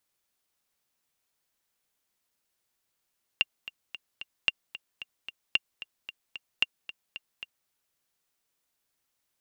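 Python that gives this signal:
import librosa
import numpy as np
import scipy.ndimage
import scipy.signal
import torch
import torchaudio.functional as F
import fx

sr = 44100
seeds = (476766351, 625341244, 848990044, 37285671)

y = fx.click_track(sr, bpm=224, beats=4, bars=4, hz=2790.0, accent_db=16.0, level_db=-9.0)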